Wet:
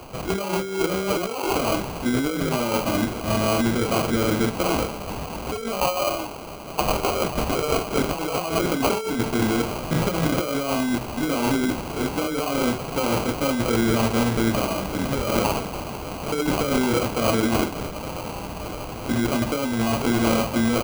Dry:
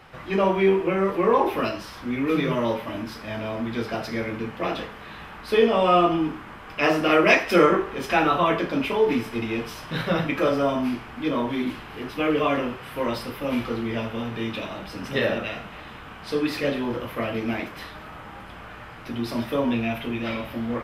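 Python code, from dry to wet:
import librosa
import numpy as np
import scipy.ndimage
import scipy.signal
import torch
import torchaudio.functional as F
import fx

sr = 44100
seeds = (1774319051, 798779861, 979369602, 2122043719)

y = fx.highpass(x, sr, hz=1100.0, slope=12, at=(5.8, 7.91))
y = fx.over_compress(y, sr, threshold_db=-28.0, ratio=-1.0)
y = fx.sample_hold(y, sr, seeds[0], rate_hz=1800.0, jitter_pct=0)
y = y * librosa.db_to_amplitude(5.5)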